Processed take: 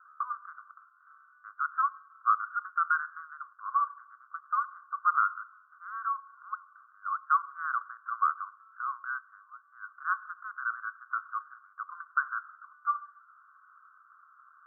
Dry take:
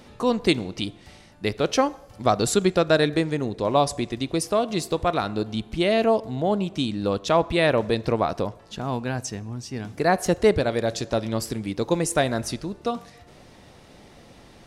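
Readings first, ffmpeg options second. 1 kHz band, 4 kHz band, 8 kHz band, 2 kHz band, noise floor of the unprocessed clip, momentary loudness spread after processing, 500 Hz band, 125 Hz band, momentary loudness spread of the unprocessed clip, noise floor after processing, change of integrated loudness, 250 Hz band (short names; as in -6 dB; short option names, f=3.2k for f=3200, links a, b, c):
-2.5 dB, under -40 dB, under -40 dB, -3.5 dB, -50 dBFS, 20 LU, under -40 dB, under -40 dB, 10 LU, -62 dBFS, -8.5 dB, under -40 dB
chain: -filter_complex "[0:a]asplit=2[a][b];[b]alimiter=limit=-13dB:level=0:latency=1:release=29,volume=2dB[c];[a][c]amix=inputs=2:normalize=0,asuperpass=centerf=1300:order=12:qfactor=3"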